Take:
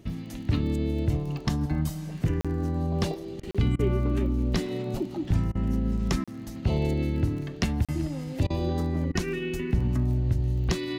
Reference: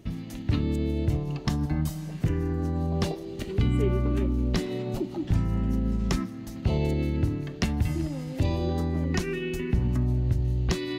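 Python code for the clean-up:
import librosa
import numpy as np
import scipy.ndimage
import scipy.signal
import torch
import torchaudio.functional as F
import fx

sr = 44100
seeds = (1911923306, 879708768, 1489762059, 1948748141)

y = fx.fix_declick_ar(x, sr, threshold=6.5)
y = fx.fix_interpolate(y, sr, at_s=(2.41, 3.51, 6.24, 7.85), length_ms=36.0)
y = fx.fix_interpolate(y, sr, at_s=(3.4, 3.76, 5.52, 8.47, 9.12), length_ms=30.0)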